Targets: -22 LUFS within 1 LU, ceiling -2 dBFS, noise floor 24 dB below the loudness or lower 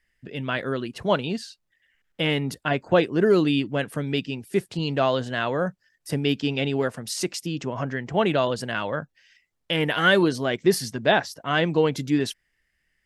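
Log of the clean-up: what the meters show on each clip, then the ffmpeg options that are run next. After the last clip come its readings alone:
loudness -24.5 LUFS; peak level -6.0 dBFS; loudness target -22.0 LUFS
-> -af "volume=1.33"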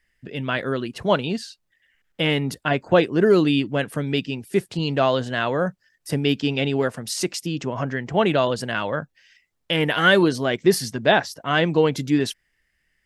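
loudness -22.0 LUFS; peak level -3.5 dBFS; noise floor -72 dBFS

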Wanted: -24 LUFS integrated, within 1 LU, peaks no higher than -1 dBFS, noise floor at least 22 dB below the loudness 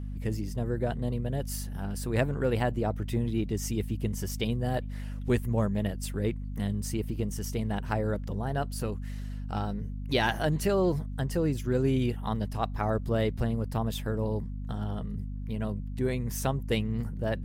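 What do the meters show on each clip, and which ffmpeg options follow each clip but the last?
hum 50 Hz; highest harmonic 250 Hz; hum level -33 dBFS; loudness -31.0 LUFS; peak level -12.0 dBFS; loudness target -24.0 LUFS
-> -af "bandreject=f=50:t=h:w=6,bandreject=f=100:t=h:w=6,bandreject=f=150:t=h:w=6,bandreject=f=200:t=h:w=6,bandreject=f=250:t=h:w=6"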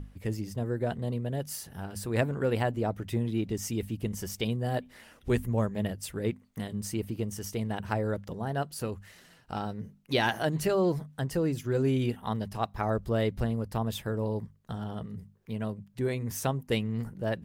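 hum not found; loudness -32.0 LUFS; peak level -12.5 dBFS; loudness target -24.0 LUFS
-> -af "volume=2.51"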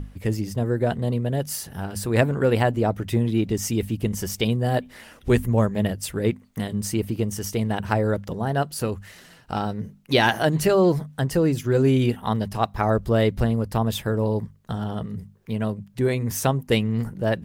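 loudness -24.0 LUFS; peak level -4.5 dBFS; noise floor -51 dBFS

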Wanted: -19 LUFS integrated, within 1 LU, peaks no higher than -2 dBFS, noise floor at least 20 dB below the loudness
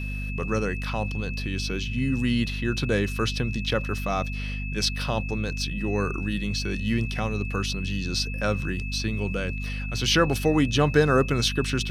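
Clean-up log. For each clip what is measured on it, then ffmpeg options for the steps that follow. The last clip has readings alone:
hum 50 Hz; highest harmonic 250 Hz; hum level -29 dBFS; steady tone 2.6 kHz; tone level -36 dBFS; loudness -26.0 LUFS; peak level -7.0 dBFS; loudness target -19.0 LUFS
-> -af "bandreject=f=50:t=h:w=4,bandreject=f=100:t=h:w=4,bandreject=f=150:t=h:w=4,bandreject=f=200:t=h:w=4,bandreject=f=250:t=h:w=4"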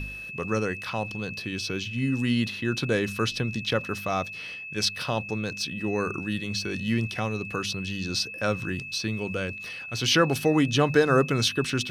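hum not found; steady tone 2.6 kHz; tone level -36 dBFS
-> -af "bandreject=f=2600:w=30"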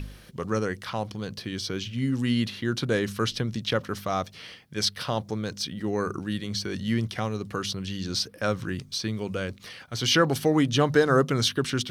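steady tone not found; loudness -27.5 LUFS; peak level -7.5 dBFS; loudness target -19.0 LUFS
-> -af "volume=2.66,alimiter=limit=0.794:level=0:latency=1"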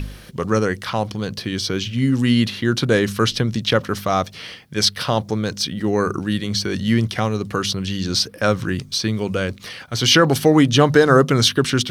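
loudness -19.0 LUFS; peak level -2.0 dBFS; noise floor -41 dBFS

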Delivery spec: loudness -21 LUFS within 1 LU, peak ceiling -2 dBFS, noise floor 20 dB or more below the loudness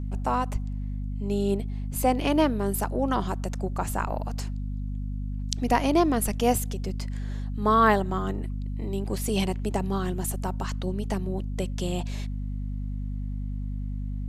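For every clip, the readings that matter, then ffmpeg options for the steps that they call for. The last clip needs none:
hum 50 Hz; highest harmonic 250 Hz; hum level -28 dBFS; loudness -28.0 LUFS; peak level -4.0 dBFS; loudness target -21.0 LUFS
-> -af "bandreject=f=50:t=h:w=6,bandreject=f=100:t=h:w=6,bandreject=f=150:t=h:w=6,bandreject=f=200:t=h:w=6,bandreject=f=250:t=h:w=6"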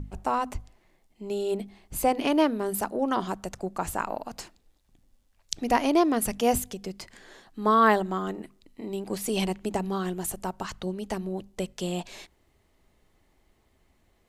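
hum not found; loudness -28.0 LUFS; peak level -4.0 dBFS; loudness target -21.0 LUFS
-> -af "volume=2.24,alimiter=limit=0.794:level=0:latency=1"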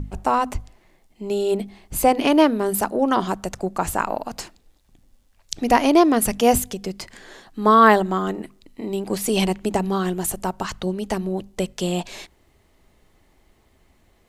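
loudness -21.0 LUFS; peak level -2.0 dBFS; noise floor -60 dBFS

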